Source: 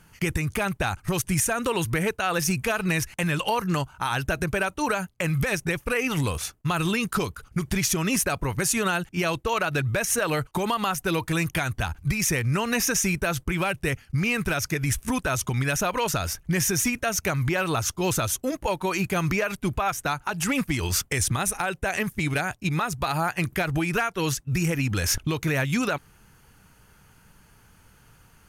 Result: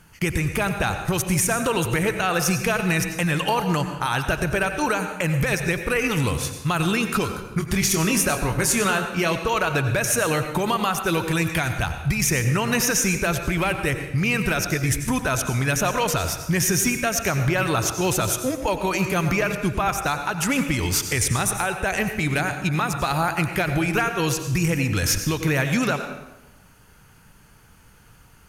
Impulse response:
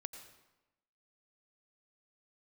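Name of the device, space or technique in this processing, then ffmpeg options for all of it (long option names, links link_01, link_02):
bathroom: -filter_complex "[1:a]atrim=start_sample=2205[link_01];[0:a][link_01]afir=irnorm=-1:irlink=0,asettb=1/sr,asplit=3[link_02][link_03][link_04];[link_02]atrim=end=7.574[link_05];[link_03]atrim=start=7.57:end=9.33,asetpts=PTS-STARTPTS,afade=type=in:duration=0.004:curve=qsin,afade=type=out:start_time=1.756:duration=0.004:curve=qsin,asplit=2[link_06][link_07];[link_07]adelay=25,volume=-8dB[link_08];[link_06][link_08]amix=inputs=2:normalize=0,atrim=end_sample=77616[link_09];[link_04]atrim=start=9.326[link_10];[link_05][link_09]acrossfade=duration=0.004:curve1=hsin:curve2=qsin[link_11];[link_11][link_10]acrossfade=duration=0.004:curve1=qsin:curve2=hsin,volume=6.5dB"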